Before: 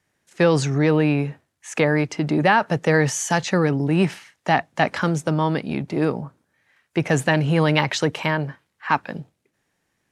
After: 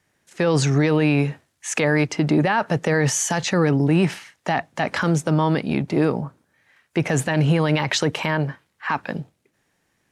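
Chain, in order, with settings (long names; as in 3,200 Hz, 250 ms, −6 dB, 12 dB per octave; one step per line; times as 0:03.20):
0:00.67–0:02.04: parametric band 6,400 Hz +5 dB 2.9 octaves
brickwall limiter −13 dBFS, peak gain reduction 10 dB
level +3.5 dB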